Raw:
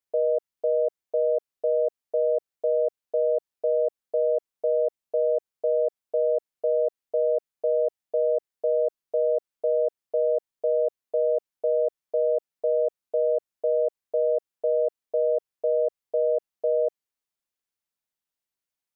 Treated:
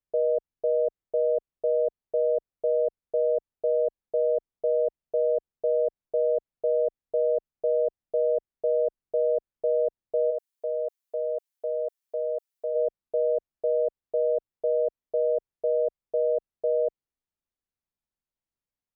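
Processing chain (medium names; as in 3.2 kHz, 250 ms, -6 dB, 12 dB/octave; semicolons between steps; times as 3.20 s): tilt EQ -3.5 dB/octave, from 10.30 s +2 dB/octave, from 12.74 s -3 dB/octave; trim -4 dB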